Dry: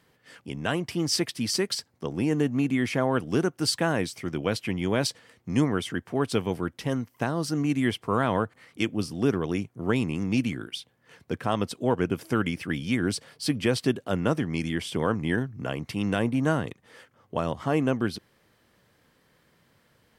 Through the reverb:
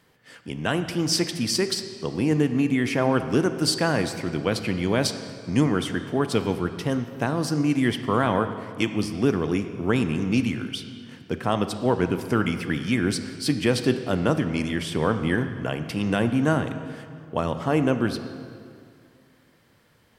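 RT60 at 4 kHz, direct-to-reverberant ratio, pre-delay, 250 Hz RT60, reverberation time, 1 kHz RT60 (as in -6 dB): 1.7 s, 9.0 dB, 24 ms, 2.4 s, 2.3 s, 2.2 s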